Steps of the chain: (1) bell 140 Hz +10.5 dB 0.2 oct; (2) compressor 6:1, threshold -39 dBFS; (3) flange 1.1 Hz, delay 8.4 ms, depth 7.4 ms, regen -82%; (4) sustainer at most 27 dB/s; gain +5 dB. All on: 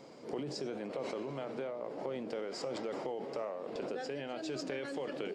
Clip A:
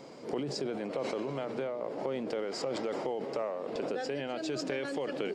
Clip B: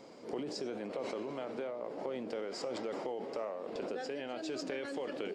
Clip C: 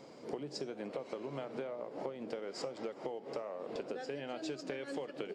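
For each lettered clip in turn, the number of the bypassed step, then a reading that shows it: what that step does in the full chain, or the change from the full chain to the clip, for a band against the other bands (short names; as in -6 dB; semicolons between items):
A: 3, loudness change +4.5 LU; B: 1, 125 Hz band -5.5 dB; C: 4, crest factor change +2.5 dB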